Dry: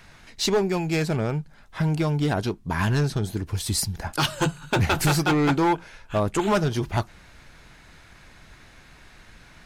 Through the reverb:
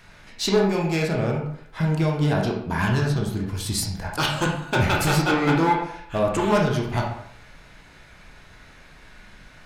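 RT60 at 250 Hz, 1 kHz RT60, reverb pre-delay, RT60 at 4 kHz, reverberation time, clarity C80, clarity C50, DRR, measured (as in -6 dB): 0.60 s, 0.65 s, 19 ms, 0.45 s, 0.65 s, 8.0 dB, 4.0 dB, -1.0 dB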